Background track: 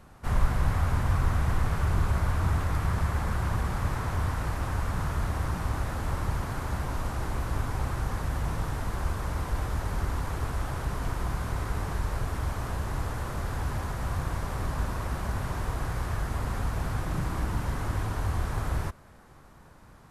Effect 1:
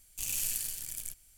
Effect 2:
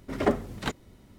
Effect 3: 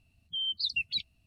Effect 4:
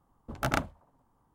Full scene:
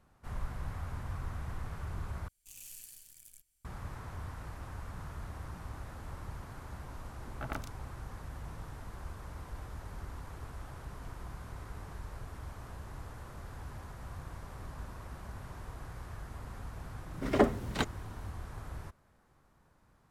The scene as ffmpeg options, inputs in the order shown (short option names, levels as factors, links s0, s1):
-filter_complex "[0:a]volume=0.2[s0];[4:a]acrossover=split=3400[s1][s2];[s2]adelay=120[s3];[s1][s3]amix=inputs=2:normalize=0[s4];[s0]asplit=2[s5][s6];[s5]atrim=end=2.284[s7];[1:a]atrim=end=1.37,asetpts=PTS-STARTPTS,volume=0.15[s8];[s6]atrim=start=3.646[s9];[s4]atrim=end=1.34,asetpts=PTS-STARTPTS,volume=0.266,afade=t=in:d=0.004:c=hsin,afade=t=out:st=1.336:d=0.004:c=hsin,adelay=307818S[s10];[2:a]atrim=end=1.18,asetpts=PTS-STARTPTS,volume=0.891,afade=t=in:d=0.004:c=hsin,afade=t=out:st=1.176:d=0.004:c=hsin,adelay=17130[s11];[s7][s8]acrossfade=d=0.004:c1=hsin:c2=hsin[s12];[s12][s9]acrossfade=d=0.004:c1=hsin:c2=hsin[s13];[s13][s10][s11]amix=inputs=3:normalize=0"